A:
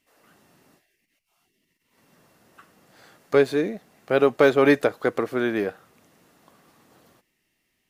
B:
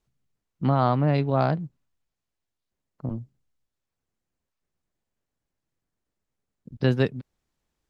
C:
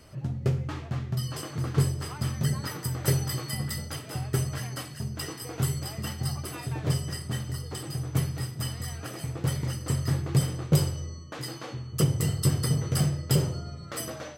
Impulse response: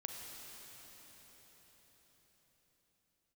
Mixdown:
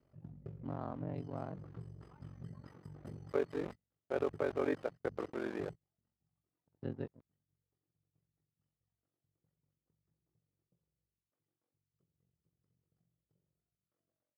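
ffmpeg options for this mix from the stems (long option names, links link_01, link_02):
-filter_complex "[0:a]highpass=frequency=470:poles=1,alimiter=limit=-12dB:level=0:latency=1:release=306,acrusher=bits=4:mix=0:aa=0.000001,volume=-4dB,asplit=2[link_01][link_02];[1:a]aeval=exprs='sgn(val(0))*max(abs(val(0))-0.0188,0)':channel_layout=same,volume=-11dB[link_03];[2:a]acompressor=threshold=-25dB:ratio=6,volume=-11.5dB[link_04];[link_02]apad=whole_len=634034[link_05];[link_04][link_05]sidechaingate=range=-34dB:threshold=-37dB:ratio=16:detection=peak[link_06];[link_01][link_03][link_06]amix=inputs=3:normalize=0,bandpass=frequency=260:width_type=q:width=0.54:csg=0,equalizer=frequency=250:width=0.4:gain=-3.5,aeval=exprs='val(0)*sin(2*PI*23*n/s)':channel_layout=same"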